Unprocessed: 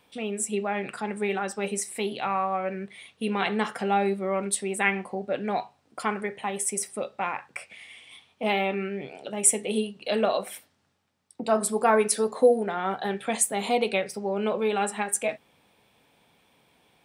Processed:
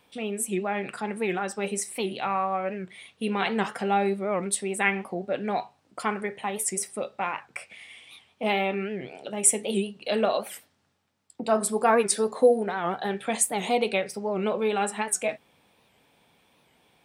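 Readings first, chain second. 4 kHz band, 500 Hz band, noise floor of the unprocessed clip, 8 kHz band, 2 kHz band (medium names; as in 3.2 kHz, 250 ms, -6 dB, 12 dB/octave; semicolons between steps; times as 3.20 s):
0.0 dB, 0.0 dB, -67 dBFS, 0.0 dB, 0.0 dB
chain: warped record 78 rpm, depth 160 cents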